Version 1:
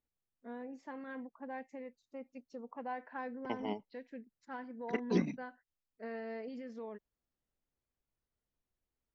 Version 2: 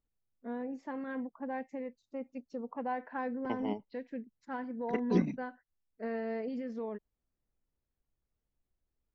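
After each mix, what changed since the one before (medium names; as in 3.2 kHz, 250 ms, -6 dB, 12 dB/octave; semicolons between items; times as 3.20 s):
first voice +4.5 dB; master: add tilt EQ -1.5 dB/octave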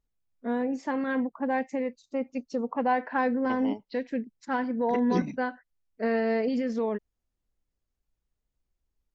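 first voice +10.0 dB; master: add treble shelf 3.8 kHz +10.5 dB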